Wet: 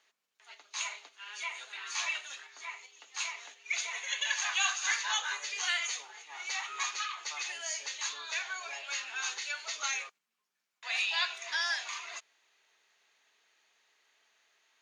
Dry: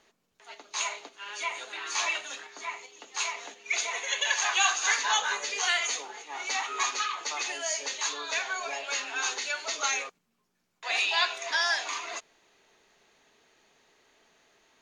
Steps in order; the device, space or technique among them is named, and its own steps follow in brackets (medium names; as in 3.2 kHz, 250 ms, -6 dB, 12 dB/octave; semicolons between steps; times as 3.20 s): filter by subtraction (in parallel: low-pass 2 kHz 12 dB/octave + polarity flip); on the sum: trim -6 dB